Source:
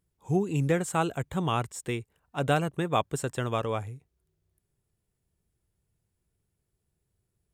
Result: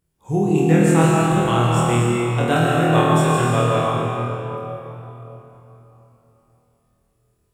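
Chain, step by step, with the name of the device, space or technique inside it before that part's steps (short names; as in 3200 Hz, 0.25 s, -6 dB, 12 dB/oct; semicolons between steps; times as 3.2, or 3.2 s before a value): tunnel (flutter echo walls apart 4.3 m, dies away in 0.67 s; reverb RT60 3.6 s, pre-delay 0.11 s, DRR -2.5 dB); gain +3 dB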